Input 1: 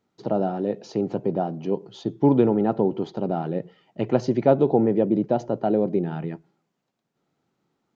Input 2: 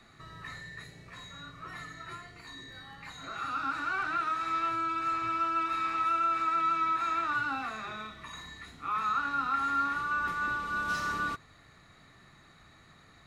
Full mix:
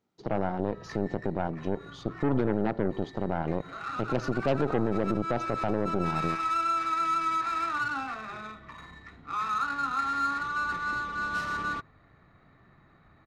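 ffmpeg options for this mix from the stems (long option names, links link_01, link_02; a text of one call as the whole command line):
ffmpeg -i stem1.wav -i stem2.wav -filter_complex "[0:a]aeval=exprs='0.596*(cos(1*acos(clip(val(0)/0.596,-1,1)))-cos(1*PI/2))+0.0422*(cos(7*acos(clip(val(0)/0.596,-1,1)))-cos(7*PI/2))+0.0531*(cos(8*acos(clip(val(0)/0.596,-1,1)))-cos(8*PI/2))':channel_layout=same,volume=1dB,asplit=2[link_01][link_02];[1:a]adynamicsmooth=sensitivity=7:basefreq=1600,adelay=450,volume=1dB[link_03];[link_02]apad=whole_len=604691[link_04];[link_03][link_04]sidechaincompress=threshold=-22dB:ratio=8:attack=7.5:release=136[link_05];[link_01][link_05]amix=inputs=2:normalize=0,alimiter=limit=-16.5dB:level=0:latency=1:release=23" out.wav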